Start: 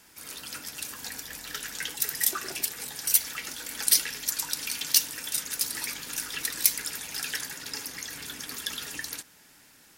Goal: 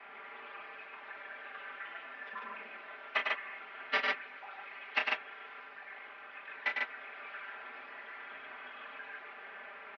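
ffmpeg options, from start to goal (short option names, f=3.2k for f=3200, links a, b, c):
-filter_complex "[0:a]aeval=exprs='val(0)+0.5*0.1*sgn(val(0))':c=same,agate=range=-31dB:threshold=-15dB:ratio=16:detection=peak,aecho=1:1:5.2:0.97,asplit=3[a][b][c];[a]afade=t=out:st=5.6:d=0.02[d];[b]tremolo=f=51:d=0.571,afade=t=in:st=5.6:d=0.02,afade=t=out:st=6.47:d=0.02[e];[c]afade=t=in:st=6.47:d=0.02[f];[d][e][f]amix=inputs=3:normalize=0,asplit=2[g][h];[h]aecho=0:1:32.07|102|145.8:0.447|0.631|0.794[i];[g][i]amix=inputs=2:normalize=0,highpass=f=580:t=q:w=0.5412,highpass=f=580:t=q:w=1.307,lowpass=f=2.6k:t=q:w=0.5176,lowpass=f=2.6k:t=q:w=0.7071,lowpass=f=2.6k:t=q:w=1.932,afreqshift=-160,volume=9dB"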